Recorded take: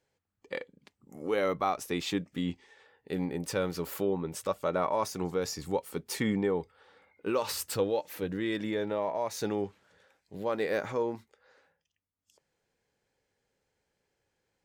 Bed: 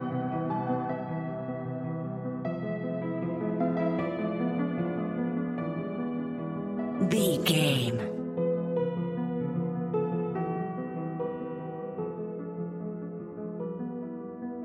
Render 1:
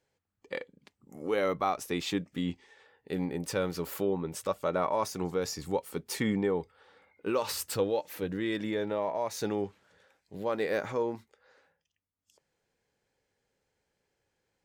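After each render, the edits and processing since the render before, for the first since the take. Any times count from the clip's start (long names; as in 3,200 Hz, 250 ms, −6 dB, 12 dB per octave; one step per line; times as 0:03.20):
no processing that can be heard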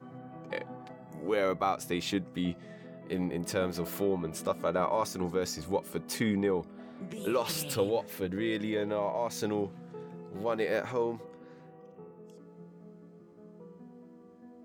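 mix in bed −15.5 dB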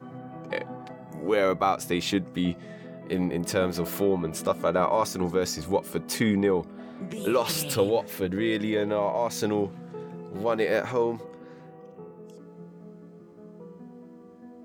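level +5.5 dB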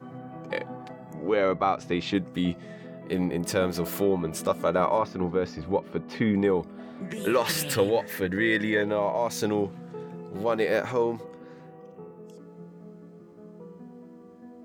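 0:01.13–0:02.15: high-frequency loss of the air 150 metres
0:04.98–0:06.35: high-frequency loss of the air 300 metres
0:07.05–0:08.82: parametric band 1,800 Hz +13.5 dB 0.34 octaves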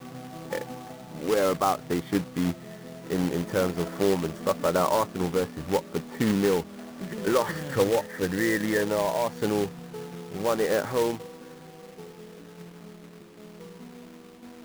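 Savitzky-Golay smoothing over 41 samples
log-companded quantiser 4 bits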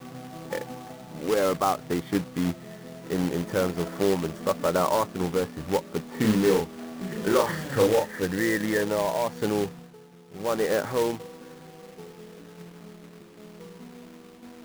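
0:06.11–0:08.21: double-tracking delay 37 ms −3.5 dB
0:09.68–0:10.56: duck −12 dB, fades 0.29 s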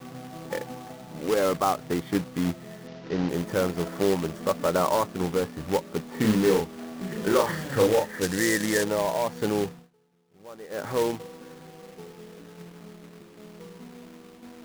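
0:02.87–0:03.29: variable-slope delta modulation 32 kbit/s
0:08.21–0:08.84: parametric band 7,500 Hz +9.5 dB 1.9 octaves
0:09.69–0:10.91: duck −17 dB, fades 0.21 s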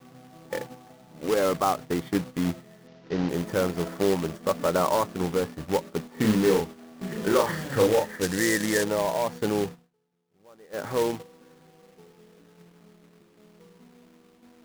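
noise gate −35 dBFS, range −9 dB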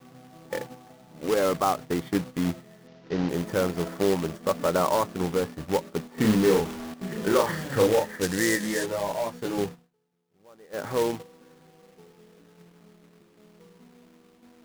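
0:06.18–0:06.94: converter with a step at zero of −33 dBFS
0:08.55–0:09.57: micro pitch shift up and down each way 23 cents → 11 cents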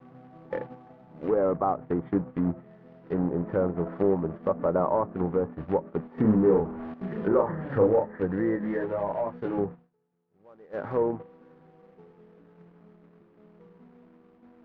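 low-pass filter 1,500 Hz 12 dB per octave
treble cut that deepens with the level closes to 1,100 Hz, closed at −23 dBFS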